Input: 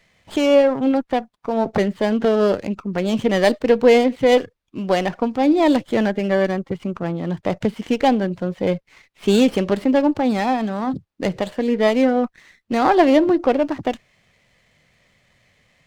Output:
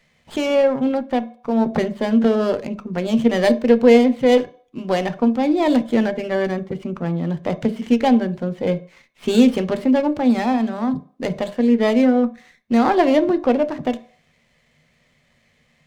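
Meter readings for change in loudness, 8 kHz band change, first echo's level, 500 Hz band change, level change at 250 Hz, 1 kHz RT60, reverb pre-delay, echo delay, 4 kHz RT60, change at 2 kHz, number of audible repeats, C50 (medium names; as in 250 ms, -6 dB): +0.5 dB, no reading, no echo, -1.0 dB, +2.0 dB, 0.45 s, 3 ms, no echo, 0.40 s, -1.5 dB, no echo, 18.0 dB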